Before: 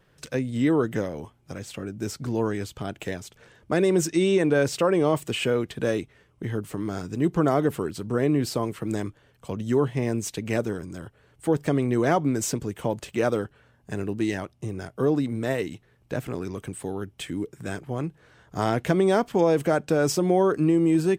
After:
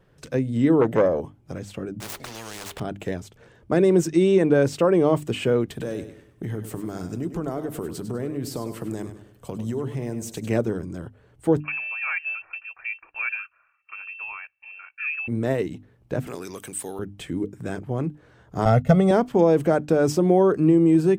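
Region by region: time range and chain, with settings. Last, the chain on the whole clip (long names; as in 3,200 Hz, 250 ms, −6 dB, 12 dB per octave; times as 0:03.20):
0:00.81–0:01.21: parametric band 580 Hz +13 dB 1.1 octaves + saturating transformer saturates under 920 Hz
0:02.00–0:02.80: running median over 9 samples + mains-hum notches 50/100/150/200/250/300/350/400/450 Hz + every bin compressed towards the loudest bin 10 to 1
0:05.70–0:10.50: high-shelf EQ 6,500 Hz +12 dB + downward compressor 4 to 1, threshold −29 dBFS + repeating echo 100 ms, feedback 37%, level −10.5 dB
0:11.60–0:15.28: high-pass filter 200 Hz 24 dB per octave + phaser with its sweep stopped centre 540 Hz, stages 8 + voice inversion scrambler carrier 2,900 Hz
0:16.27–0:16.99: spectral tilt +4.5 dB per octave + upward compression, threshold −33 dBFS + one half of a high-frequency compander decoder only
0:18.65–0:19.11: downward expander −28 dBFS + low-shelf EQ 130 Hz +6.5 dB + comb filter 1.5 ms, depth 89%
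whole clip: tilt shelving filter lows +4.5 dB, about 1,100 Hz; mains-hum notches 50/100/150/200/250/300 Hz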